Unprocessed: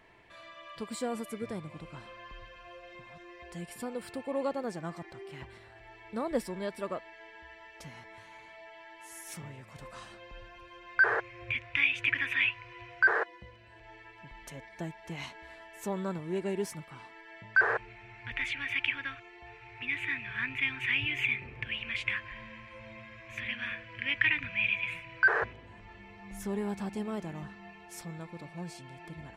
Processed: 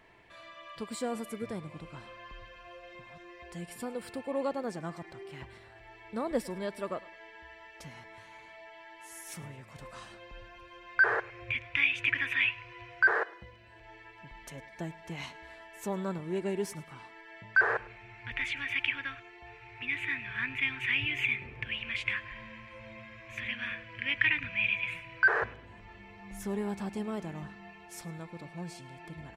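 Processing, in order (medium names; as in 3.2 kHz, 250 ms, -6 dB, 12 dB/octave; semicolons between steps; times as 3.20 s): feedback delay 104 ms, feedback 29%, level -21.5 dB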